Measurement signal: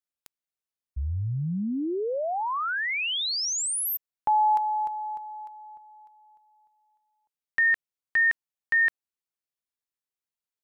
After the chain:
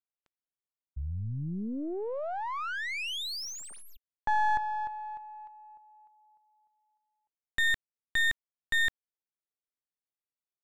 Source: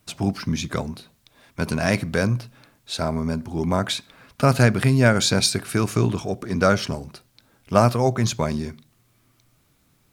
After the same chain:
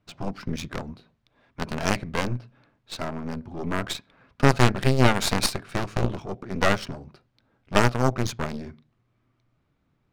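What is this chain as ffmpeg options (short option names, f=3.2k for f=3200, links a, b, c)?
-af "aeval=exprs='0.794*(cos(1*acos(clip(val(0)/0.794,-1,1)))-cos(1*PI/2))+0.0282*(cos(3*acos(clip(val(0)/0.794,-1,1)))-cos(3*PI/2))+0.355*(cos(4*acos(clip(val(0)/0.794,-1,1)))-cos(4*PI/2))+0.0178*(cos(7*acos(clip(val(0)/0.794,-1,1)))-cos(7*PI/2))':c=same,adynamicsmooth=sensitivity=5.5:basefreq=2.6k,volume=-3.5dB"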